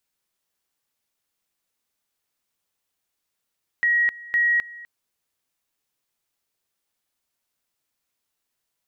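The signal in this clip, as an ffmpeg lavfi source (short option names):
-f lavfi -i "aevalsrc='pow(10,(-16.5-20.5*gte(mod(t,0.51),0.26))/20)*sin(2*PI*1900*t)':d=1.02:s=44100"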